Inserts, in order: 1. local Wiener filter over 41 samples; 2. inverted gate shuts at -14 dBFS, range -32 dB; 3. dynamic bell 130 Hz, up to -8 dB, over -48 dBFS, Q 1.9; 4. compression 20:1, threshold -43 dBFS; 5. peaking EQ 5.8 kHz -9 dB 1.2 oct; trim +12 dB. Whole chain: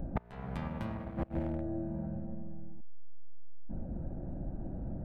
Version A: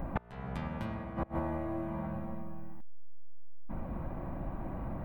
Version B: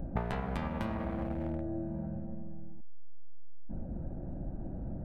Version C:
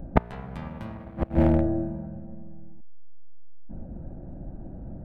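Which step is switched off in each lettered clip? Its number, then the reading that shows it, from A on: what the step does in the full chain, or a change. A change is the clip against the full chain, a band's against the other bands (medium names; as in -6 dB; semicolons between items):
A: 1, 1 kHz band +4.5 dB; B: 2, 2 kHz band +3.5 dB; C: 4, mean gain reduction 2.5 dB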